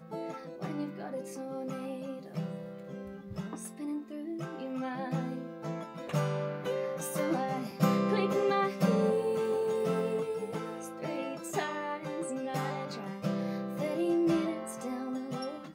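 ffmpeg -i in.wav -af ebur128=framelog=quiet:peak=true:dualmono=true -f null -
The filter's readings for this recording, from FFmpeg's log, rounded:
Integrated loudness:
  I:         -30.8 LUFS
  Threshold: -40.8 LUFS
Loudness range:
  LRA:         9.9 LU
  Threshold: -50.6 LUFS
  LRA low:   -36.8 LUFS
  LRA high:  -26.9 LUFS
True peak:
  Peak:      -13.6 dBFS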